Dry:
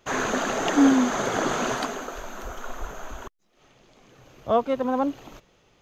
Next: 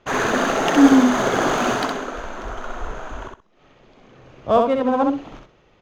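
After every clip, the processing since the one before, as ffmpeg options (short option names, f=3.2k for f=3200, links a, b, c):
-af "adynamicsmooth=sensitivity=6.5:basefreq=3.7k,aecho=1:1:64|128|192:0.631|0.126|0.0252,volume=4.5dB"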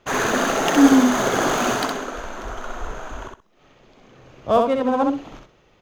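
-af "highshelf=f=7.1k:g=10.5,volume=-1dB"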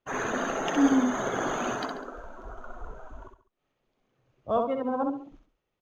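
-af "afftdn=nr=16:nf=-30,aecho=1:1:138:0.133,volume=-9dB"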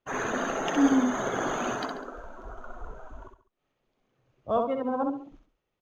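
-af anull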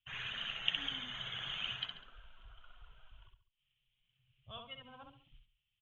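-filter_complex "[0:a]firequalizer=gain_entry='entry(130,0);entry(270,-30);entry(3100,14);entry(4800,-22)':delay=0.05:min_phase=1,acrossover=split=250[a][b];[a]acompressor=threshold=-49dB:ratio=6[c];[c][b]amix=inputs=2:normalize=0,volume=-4dB"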